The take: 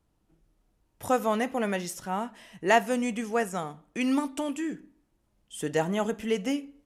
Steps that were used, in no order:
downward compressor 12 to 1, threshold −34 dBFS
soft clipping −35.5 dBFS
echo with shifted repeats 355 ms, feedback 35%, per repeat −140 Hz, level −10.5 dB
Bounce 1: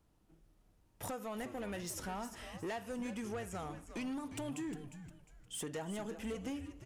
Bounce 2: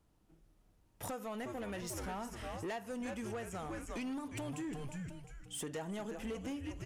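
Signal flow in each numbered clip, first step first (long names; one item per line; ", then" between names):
downward compressor, then soft clipping, then echo with shifted repeats
echo with shifted repeats, then downward compressor, then soft clipping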